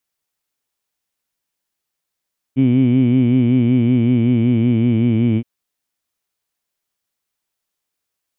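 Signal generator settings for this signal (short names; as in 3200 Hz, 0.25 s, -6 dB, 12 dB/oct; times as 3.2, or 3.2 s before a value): formant-synthesis vowel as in heed, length 2.87 s, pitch 128 Hz, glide -2 st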